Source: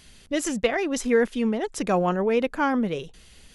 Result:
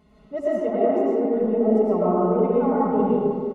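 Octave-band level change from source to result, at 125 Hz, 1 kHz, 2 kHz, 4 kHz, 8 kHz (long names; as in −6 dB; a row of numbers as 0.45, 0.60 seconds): +4.0 dB, +2.5 dB, below −10 dB, below −15 dB, below −25 dB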